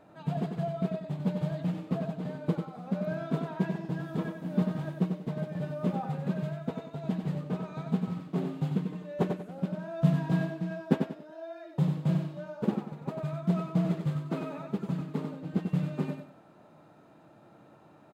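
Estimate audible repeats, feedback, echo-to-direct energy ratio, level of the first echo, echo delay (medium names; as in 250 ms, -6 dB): 3, 30%, -5.5 dB, -6.0 dB, 94 ms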